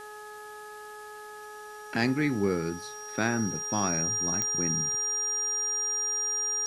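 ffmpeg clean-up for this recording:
-af "adeclick=t=4,bandreject=f=422.3:t=h:w=4,bandreject=f=844.6:t=h:w=4,bandreject=f=1266.9:t=h:w=4,bandreject=f=1689.2:t=h:w=4,bandreject=f=5700:w=30,afwtdn=0.0022"

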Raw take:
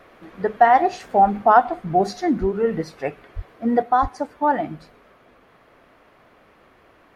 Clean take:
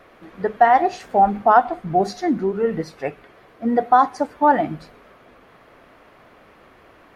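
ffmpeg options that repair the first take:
-filter_complex "[0:a]asplit=3[s0][s1][s2];[s0]afade=t=out:st=2.4:d=0.02[s3];[s1]highpass=f=140:w=0.5412,highpass=f=140:w=1.3066,afade=t=in:st=2.4:d=0.02,afade=t=out:st=2.52:d=0.02[s4];[s2]afade=t=in:st=2.52:d=0.02[s5];[s3][s4][s5]amix=inputs=3:normalize=0,asplit=3[s6][s7][s8];[s6]afade=t=out:st=3.35:d=0.02[s9];[s7]highpass=f=140:w=0.5412,highpass=f=140:w=1.3066,afade=t=in:st=3.35:d=0.02,afade=t=out:st=3.47:d=0.02[s10];[s8]afade=t=in:st=3.47:d=0.02[s11];[s9][s10][s11]amix=inputs=3:normalize=0,asplit=3[s12][s13][s14];[s12]afade=t=out:st=4.01:d=0.02[s15];[s13]highpass=f=140:w=0.5412,highpass=f=140:w=1.3066,afade=t=in:st=4.01:d=0.02,afade=t=out:st=4.13:d=0.02[s16];[s14]afade=t=in:st=4.13:d=0.02[s17];[s15][s16][s17]amix=inputs=3:normalize=0,asetnsamples=n=441:p=0,asendcmd='3.82 volume volume 4dB',volume=1"

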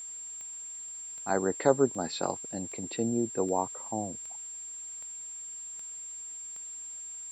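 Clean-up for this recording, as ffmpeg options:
-af "adeclick=t=4,bandreject=f=7400:w=30,agate=range=0.0891:threshold=0.02"

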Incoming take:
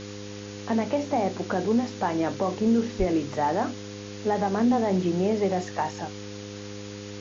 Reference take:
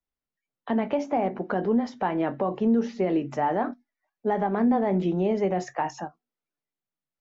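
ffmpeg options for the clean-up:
-filter_complex "[0:a]bandreject=f=102:t=h:w=4,bandreject=f=204:t=h:w=4,bandreject=f=306:t=h:w=4,bandreject=f=408:t=h:w=4,bandreject=f=510:t=h:w=4,asplit=3[s0][s1][s2];[s0]afade=t=out:st=2.98:d=0.02[s3];[s1]highpass=f=140:w=0.5412,highpass=f=140:w=1.3066,afade=t=in:st=2.98:d=0.02,afade=t=out:st=3.1:d=0.02[s4];[s2]afade=t=in:st=3.1:d=0.02[s5];[s3][s4][s5]amix=inputs=3:normalize=0,afwtdn=0.0089"

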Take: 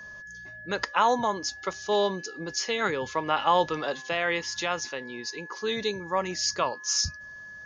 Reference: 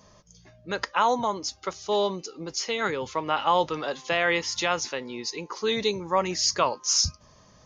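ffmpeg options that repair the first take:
-af "bandreject=f=1700:w=30,asetnsamples=n=441:p=0,asendcmd='4.02 volume volume 3.5dB',volume=1"

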